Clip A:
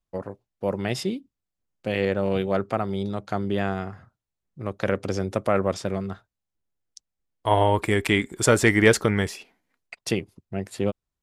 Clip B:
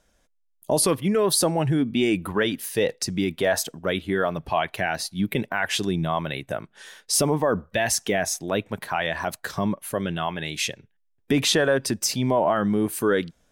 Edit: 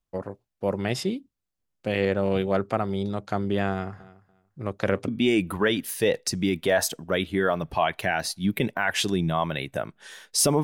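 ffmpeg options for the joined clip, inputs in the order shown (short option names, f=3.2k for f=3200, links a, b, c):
-filter_complex "[0:a]asettb=1/sr,asplit=3[a][b][c];[a]atrim=end=3.714[d];[b]atrim=start=3.71:end=5.08,asetpts=PTS-STARTPTS,afade=t=in:d=0.004:c=qsin,afade=t=out:st=1.366:d=0.004:c=qsin,aecho=1:1:288|576:0.106|0.0191,atrim=end_sample=60417[e];[c]atrim=start=5.076[f];[d][e]acrossfade=d=0.004:c1=hsin:c2=qsin[g];[g][f]acrossfade=d=0.004:c1=qsin:c2=hsin,apad=whole_dur=10.63,atrim=end=10.63,atrim=end=5.082[h];[1:a]atrim=start=1.828:end=7.38[i];[h][i]acrossfade=d=0.004:c1=hsin:c2=hsin"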